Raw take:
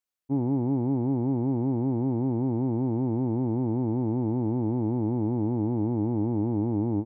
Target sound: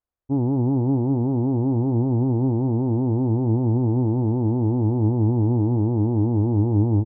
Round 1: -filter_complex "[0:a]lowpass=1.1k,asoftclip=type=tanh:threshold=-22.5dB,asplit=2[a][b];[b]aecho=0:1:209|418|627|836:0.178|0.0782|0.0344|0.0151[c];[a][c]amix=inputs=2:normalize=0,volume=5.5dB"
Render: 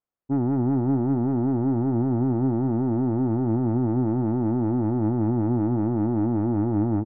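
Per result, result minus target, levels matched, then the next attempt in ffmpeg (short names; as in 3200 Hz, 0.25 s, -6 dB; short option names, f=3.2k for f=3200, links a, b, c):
soft clip: distortion +16 dB; 125 Hz band -3.5 dB
-filter_complex "[0:a]lowpass=1.1k,asoftclip=type=tanh:threshold=-12dB,asplit=2[a][b];[b]aecho=0:1:209|418|627|836:0.178|0.0782|0.0344|0.0151[c];[a][c]amix=inputs=2:normalize=0,volume=5.5dB"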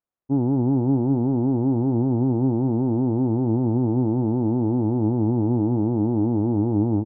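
125 Hz band -3.0 dB
-filter_complex "[0:a]lowpass=1.1k,lowshelf=f=110:t=q:w=1.5:g=10.5,asoftclip=type=tanh:threshold=-12dB,asplit=2[a][b];[b]aecho=0:1:209|418|627|836:0.178|0.0782|0.0344|0.0151[c];[a][c]amix=inputs=2:normalize=0,volume=5.5dB"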